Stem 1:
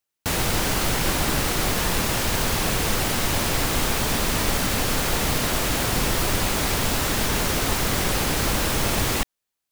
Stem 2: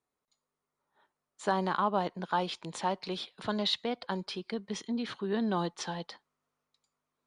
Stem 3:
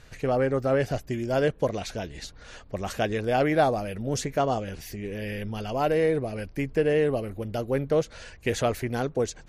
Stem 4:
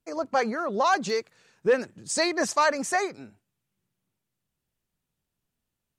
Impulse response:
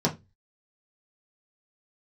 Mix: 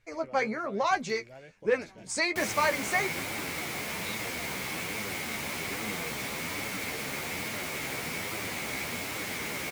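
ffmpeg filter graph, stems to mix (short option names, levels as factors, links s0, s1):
-filter_complex "[0:a]highpass=130,adelay=2100,volume=0.355[s0];[1:a]adelay=400,volume=0.282[s1];[2:a]acompressor=threshold=0.0501:ratio=6,volume=0.15[s2];[3:a]volume=0.841,asplit=2[s3][s4];[s4]apad=whole_len=338188[s5];[s1][s5]sidechaincompress=threshold=0.0141:ratio=8:attack=16:release=940[s6];[s0][s6][s2][s3]amix=inputs=4:normalize=0,equalizer=f=2200:w=5.3:g=13,flanger=delay=8.9:depth=6.6:regen=29:speed=1.2:shape=triangular"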